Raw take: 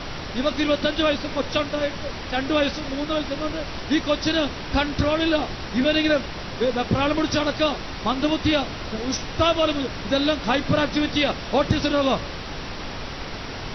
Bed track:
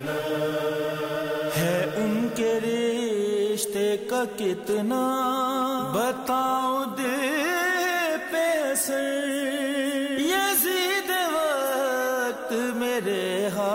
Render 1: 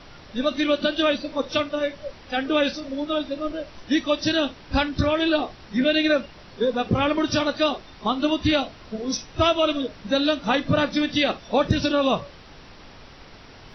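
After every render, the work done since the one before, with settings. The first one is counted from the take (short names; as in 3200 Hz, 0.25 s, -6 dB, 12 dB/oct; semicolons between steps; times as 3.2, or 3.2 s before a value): noise print and reduce 13 dB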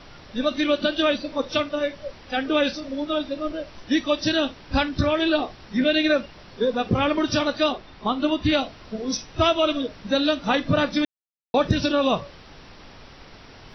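7.72–8.52 air absorption 100 m; 11.05–11.54 mute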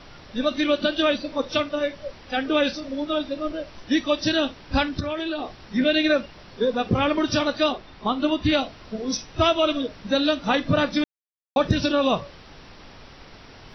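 4.99–5.6 compressor, threshold -24 dBFS; 11.04–11.56 mute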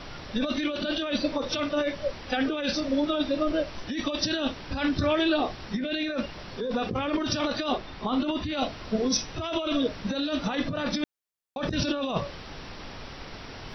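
negative-ratio compressor -27 dBFS, ratio -1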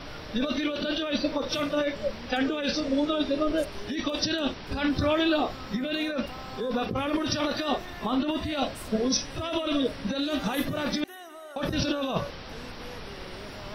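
add bed track -20 dB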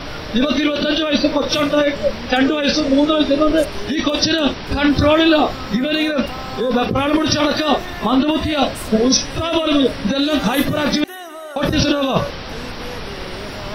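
gain +11.5 dB; limiter -2 dBFS, peak gain reduction 1 dB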